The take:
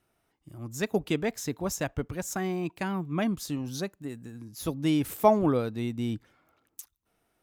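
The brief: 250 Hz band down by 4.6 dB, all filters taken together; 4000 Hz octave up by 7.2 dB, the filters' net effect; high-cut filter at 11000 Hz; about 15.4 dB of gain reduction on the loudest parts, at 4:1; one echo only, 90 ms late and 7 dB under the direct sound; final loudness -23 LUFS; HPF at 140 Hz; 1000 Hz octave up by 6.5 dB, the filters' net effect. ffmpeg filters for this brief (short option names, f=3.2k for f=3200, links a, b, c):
-af "highpass=140,lowpass=11k,equalizer=f=250:t=o:g=-6,equalizer=f=1k:t=o:g=8,equalizer=f=4k:t=o:g=9,acompressor=threshold=-29dB:ratio=4,aecho=1:1:90:0.447,volume=11dB"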